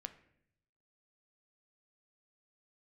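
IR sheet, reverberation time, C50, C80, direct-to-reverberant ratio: 0.70 s, 14.0 dB, 16.5 dB, 9.0 dB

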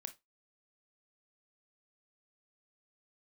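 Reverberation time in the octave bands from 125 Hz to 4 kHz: 0.20, 0.20, 0.20, 0.20, 0.15, 0.20 seconds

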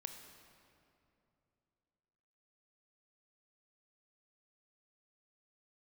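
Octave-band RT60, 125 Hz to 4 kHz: 3.3, 3.2, 3.0, 2.6, 2.1, 1.7 seconds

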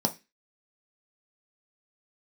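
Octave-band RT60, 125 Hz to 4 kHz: 0.30, 0.30, 0.25, 0.20, 0.35, 0.30 seconds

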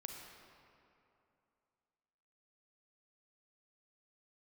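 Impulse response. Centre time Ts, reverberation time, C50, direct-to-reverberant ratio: 86 ms, 2.8 s, 2.5 dB, 1.5 dB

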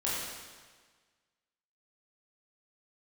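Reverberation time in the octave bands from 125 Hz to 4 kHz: 1.5, 1.5, 1.5, 1.5, 1.5, 1.4 seconds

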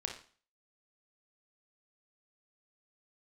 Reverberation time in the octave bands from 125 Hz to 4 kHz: 0.40, 0.45, 0.40, 0.45, 0.40, 0.40 seconds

